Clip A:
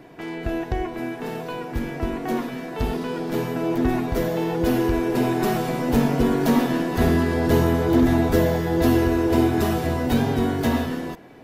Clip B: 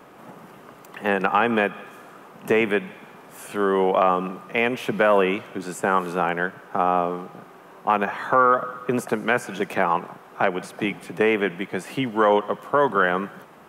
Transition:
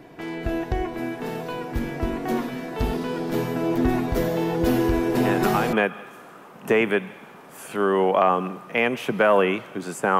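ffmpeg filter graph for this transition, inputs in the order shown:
-filter_complex "[1:a]asplit=2[a][b];[0:a]apad=whole_dur=10.19,atrim=end=10.19,atrim=end=5.732[c];[b]atrim=start=1.528:end=5.99[d];[a]atrim=start=0.93:end=1.53,asetpts=PTS-STARTPTS,volume=-6dB,afade=t=in:d=0.004:c=hsin,afade=t=out:st=0.596:d=0.004:c=hsin,adelay=226233S[e];[c][d]acrossfade=d=0.004:c1=hsin:c2=hsin[f];[f][e]amix=inputs=2:normalize=0"

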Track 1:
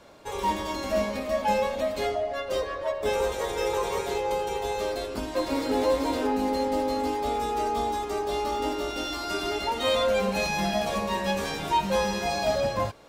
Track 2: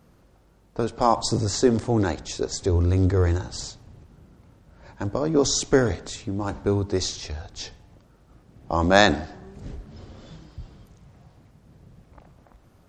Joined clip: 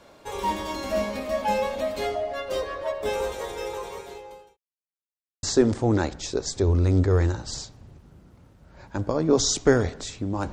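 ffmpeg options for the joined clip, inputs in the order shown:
-filter_complex "[0:a]apad=whole_dur=10.52,atrim=end=10.52,asplit=2[a][b];[a]atrim=end=4.57,asetpts=PTS-STARTPTS,afade=t=out:st=2.94:d=1.63[c];[b]atrim=start=4.57:end=5.43,asetpts=PTS-STARTPTS,volume=0[d];[1:a]atrim=start=1.49:end=6.58,asetpts=PTS-STARTPTS,afade=t=in:d=0.004:c=hsin[e];[c][d][e]concat=n=3:v=0:a=1"

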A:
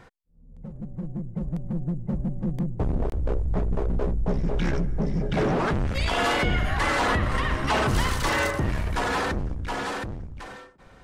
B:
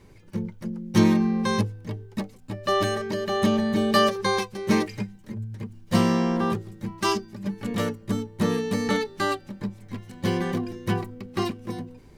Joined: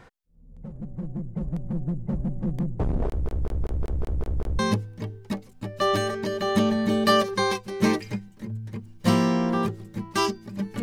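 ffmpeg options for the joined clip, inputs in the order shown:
-filter_complex "[0:a]apad=whole_dur=10.82,atrim=end=10.82,asplit=8[a][b][c][d][e][f][g][h];[a]atrim=end=3.262[i];[b]atrim=start=3.068:end=3.262[j];[c]atrim=start=3.068:end=3.262[k];[d]atrim=start=3.068:end=3.262[l];[e]atrim=start=3.068:end=3.262[m];[f]atrim=start=3.068:end=3.262[n];[g]atrim=start=3.068:end=3.262[o];[h]atrim=start=3.068:end=3.262[p];[1:a]atrim=start=1.458:end=7.69[q];[i][j]acrossfade=d=0.004:c1=hsin:c2=hsin[r];[r][k]acrossfade=d=0.004:c1=hsin:c2=hsin[s];[s][l]acrossfade=d=0.004:c1=hsin:c2=hsin[t];[t][m]acrossfade=d=0.004:c1=hsin:c2=hsin[u];[u][n]acrossfade=d=0.004:c1=hsin:c2=hsin[v];[v][o]acrossfade=d=0.004:c1=hsin:c2=hsin[w];[w][p]acrossfade=d=0.004:c1=hsin:c2=hsin[x];[x][q]acrossfade=d=0.004:c1=hsin:c2=hsin"

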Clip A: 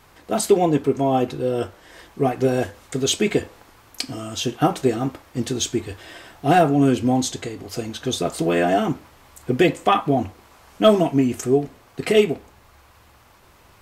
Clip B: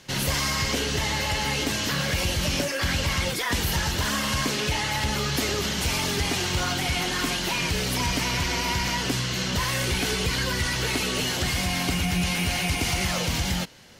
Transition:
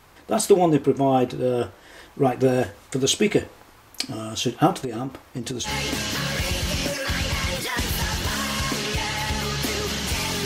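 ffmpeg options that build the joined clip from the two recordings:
-filter_complex "[0:a]asettb=1/sr,asplit=3[a][b][c];[a]atrim=end=4.824[d];[b]atrim=start=4.82:end=5.69,asetpts=PTS-STARTPTS,afade=t=in:d=0.004:c=qsin,afade=t=out:st=0.866:d=0.004:c=qsin,acompressor=threshold=-24dB:ratio=12:attack=3.2:release=140:knee=1:detection=peak[e];[c]atrim=start=5.686[f];[d][e]acrossfade=d=0.004:c1=hsin:c2=qsin[g];[g][f]acrossfade=d=0.004:c1=qsin:c2=hsin,apad=whole_dur=10.45,atrim=end=10.45,atrim=end=5.69,asetpts=PTS-STARTPTS[h];[1:a]atrim=start=1.37:end=6.19,asetpts=PTS-STARTPTS[i];[h][i]acrossfade=d=0.06:c1=tri:c2=tri"

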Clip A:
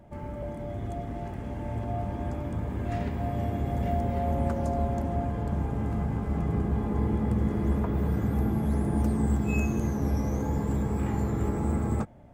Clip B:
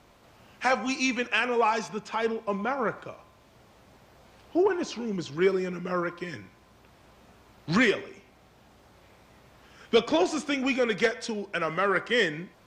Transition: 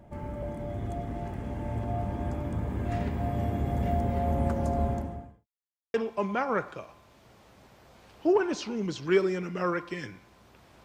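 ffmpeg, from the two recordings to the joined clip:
-filter_complex "[0:a]apad=whole_dur=10.84,atrim=end=10.84,asplit=2[a][b];[a]atrim=end=5.47,asetpts=PTS-STARTPTS,afade=t=out:st=4.9:d=0.57:c=qua[c];[b]atrim=start=5.47:end=5.94,asetpts=PTS-STARTPTS,volume=0[d];[1:a]atrim=start=2.24:end=7.14,asetpts=PTS-STARTPTS,afade=t=in:d=0.004:c=hsin[e];[c][d][e]concat=n=3:v=0:a=1"

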